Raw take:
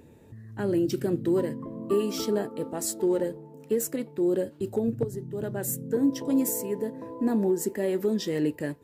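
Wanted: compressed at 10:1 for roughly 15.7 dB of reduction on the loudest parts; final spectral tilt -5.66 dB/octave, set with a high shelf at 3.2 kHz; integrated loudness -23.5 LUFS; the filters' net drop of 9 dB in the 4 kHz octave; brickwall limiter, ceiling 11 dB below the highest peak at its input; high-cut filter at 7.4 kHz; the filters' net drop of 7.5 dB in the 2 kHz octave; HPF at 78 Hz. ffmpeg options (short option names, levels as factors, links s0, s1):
-af "highpass=78,lowpass=7400,equalizer=f=2000:t=o:g=-6.5,highshelf=f=3200:g=-7.5,equalizer=f=4000:t=o:g=-3.5,acompressor=threshold=0.0158:ratio=10,volume=11.9,alimiter=limit=0.178:level=0:latency=1"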